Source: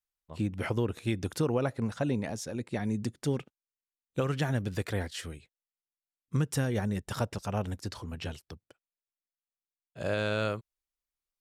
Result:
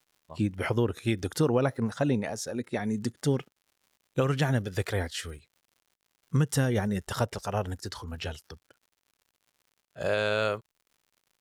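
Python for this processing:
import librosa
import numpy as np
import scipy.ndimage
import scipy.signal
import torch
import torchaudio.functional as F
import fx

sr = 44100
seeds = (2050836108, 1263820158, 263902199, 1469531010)

y = fx.dmg_crackle(x, sr, seeds[0], per_s=130.0, level_db=-49.0)
y = fx.noise_reduce_blind(y, sr, reduce_db=7)
y = F.gain(torch.from_numpy(y), 4.0).numpy()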